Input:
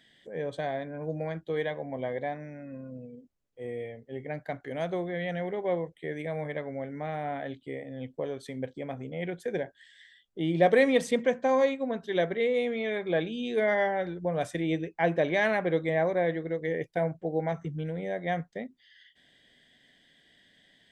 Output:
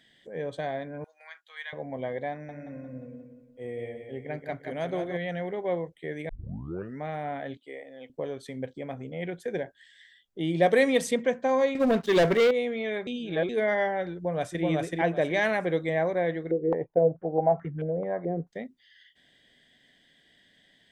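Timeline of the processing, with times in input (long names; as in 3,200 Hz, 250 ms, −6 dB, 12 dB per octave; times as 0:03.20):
0:01.04–0:01.73: high-pass filter 1,200 Hz 24 dB per octave
0:02.31–0:05.17: repeating echo 176 ms, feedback 43%, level −6.5 dB
0:06.29: tape start 0.70 s
0:07.57–0:08.10: high-pass filter 470 Hz
0:10.39–0:11.14: high-shelf EQ 5,900 Hz +9 dB
0:11.75–0:12.51: leveller curve on the samples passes 3
0:13.07–0:13.49: reverse
0:14.14–0:14.63: delay throw 380 ms, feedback 25%, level −0.5 dB
0:15.33–0:15.99: high-shelf EQ 5,400 Hz +5.5 dB
0:16.51–0:18.47: low-pass on a step sequencer 4.6 Hz 400–1,700 Hz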